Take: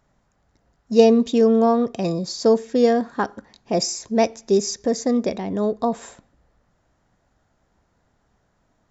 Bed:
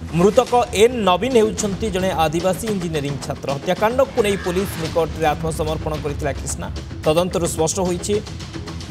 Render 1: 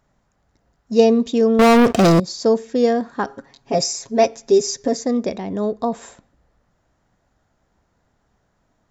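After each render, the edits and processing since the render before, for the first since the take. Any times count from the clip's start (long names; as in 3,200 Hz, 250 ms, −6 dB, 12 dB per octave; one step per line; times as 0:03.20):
0:01.59–0:02.20: leveller curve on the samples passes 5
0:03.26–0:04.97: comb filter 7.3 ms, depth 84%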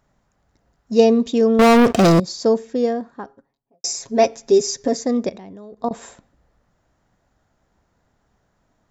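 0:02.27–0:03.84: fade out and dull
0:05.29–0:05.91: output level in coarse steps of 19 dB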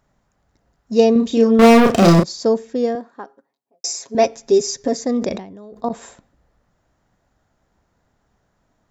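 0:01.12–0:02.24: double-tracking delay 35 ms −3 dB
0:02.95–0:04.15: high-pass filter 290 Hz
0:04.99–0:05.91: level that may fall only so fast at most 100 dB per second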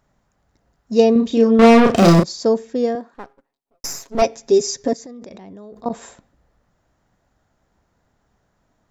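0:01.02–0:01.96: high-frequency loss of the air 58 metres
0:03.14–0:04.22: gain on one half-wave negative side −12 dB
0:04.93–0:05.86: downward compressor 10 to 1, threshold −34 dBFS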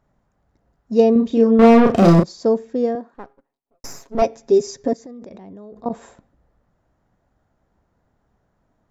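high-shelf EQ 2,000 Hz −10.5 dB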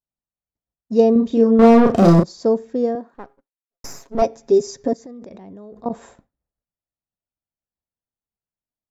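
downward expander −45 dBFS
dynamic equaliser 2,500 Hz, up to −5 dB, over −40 dBFS, Q 1.3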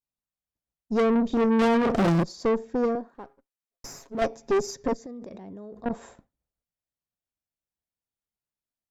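tube saturation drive 19 dB, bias 0.55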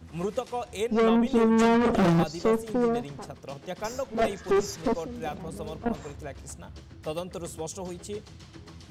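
mix in bed −16.5 dB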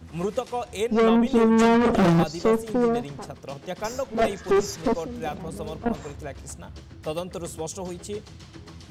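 level +3 dB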